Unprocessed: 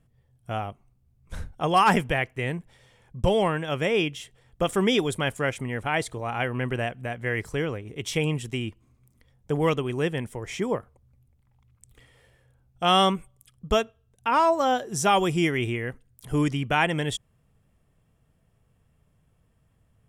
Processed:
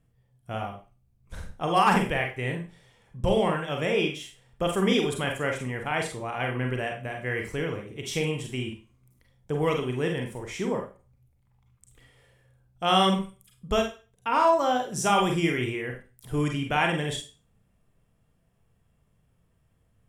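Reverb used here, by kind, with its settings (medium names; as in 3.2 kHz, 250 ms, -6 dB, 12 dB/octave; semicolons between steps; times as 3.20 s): Schroeder reverb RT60 0.33 s, combs from 32 ms, DRR 2 dB; trim -3.5 dB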